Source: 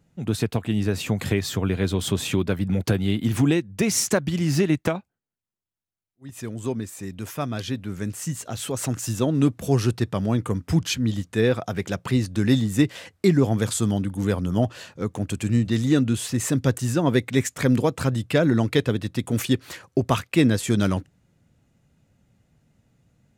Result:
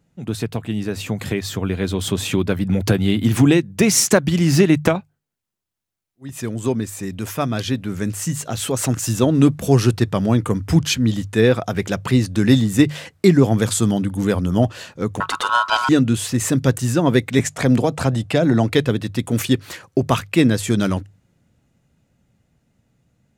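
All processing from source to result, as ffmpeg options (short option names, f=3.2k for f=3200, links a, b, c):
-filter_complex "[0:a]asettb=1/sr,asplit=3[a][b][c];[a]atrim=end=15.204[d];[b]atrim=start=15.2:end=15.89,asetpts=PTS-STARTPTS,afade=t=in:d=0.004:c=qsin,afade=t=out:st=0.686:d=0.004:c=qsin,equalizer=f=1.9k:t=o:w=1.8:g=14,aeval=exprs='val(0)*sin(2*PI*1200*n/s)':c=same[e];[c]atrim=start=15.886[f];[d][e]acrossfade=d=0.004:c1=hsin:c2=qsin[g];[g][f]acrossfade=d=0.004:c1=qsin:c2=hsin,asettb=1/sr,asplit=3[h][i][j];[h]atrim=end=17.394[k];[i]atrim=start=17.39:end=18.73,asetpts=PTS-STARTPTS,afade=t=in:d=0.004:c=qsin,afade=t=out:st=1.336:d=0.004:c=qsin,lowpass=11k,acrossover=split=310|3000[l][m][n];[m]acompressor=threshold=-24dB:ratio=6:attack=3.2:release=140:knee=2.83:detection=peak[o];[l][o][n]amix=inputs=3:normalize=0,equalizer=f=710:t=o:w=0.67:g=9[p];[j]atrim=start=18.726[q];[k][p]acrossfade=d=0.004:c1=hsin:c2=qsin[r];[r][q]acrossfade=d=0.004:c1=qsin:c2=hsin,bandreject=f=50:t=h:w=6,bandreject=f=100:t=h:w=6,bandreject=f=150:t=h:w=6,dynaudnorm=f=160:g=31:m=11.5dB"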